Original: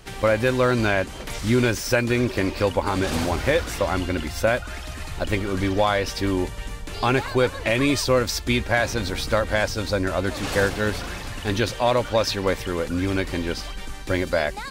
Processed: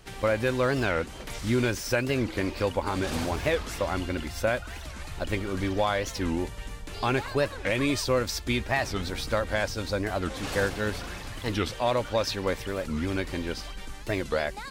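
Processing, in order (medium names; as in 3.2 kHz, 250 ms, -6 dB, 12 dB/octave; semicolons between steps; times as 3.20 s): warped record 45 rpm, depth 250 cents; trim -5.5 dB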